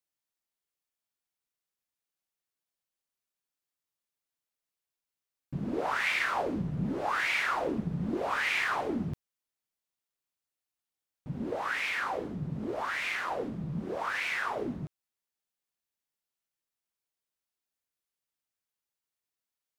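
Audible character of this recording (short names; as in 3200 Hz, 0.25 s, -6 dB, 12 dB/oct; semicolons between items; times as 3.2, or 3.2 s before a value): noise floor -91 dBFS; spectral tilt -3.5 dB/oct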